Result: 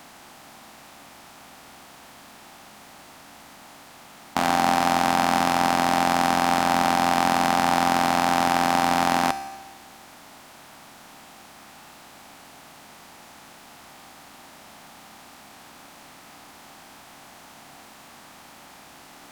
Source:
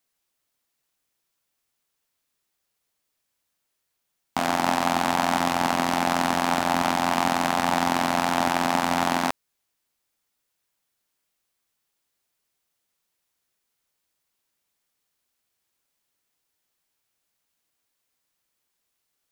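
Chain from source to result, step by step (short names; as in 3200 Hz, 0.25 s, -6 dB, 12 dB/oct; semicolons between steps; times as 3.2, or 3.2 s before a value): per-bin compression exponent 0.4; resonator 71 Hz, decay 1.3 s, harmonics all, mix 70%; gain +7.5 dB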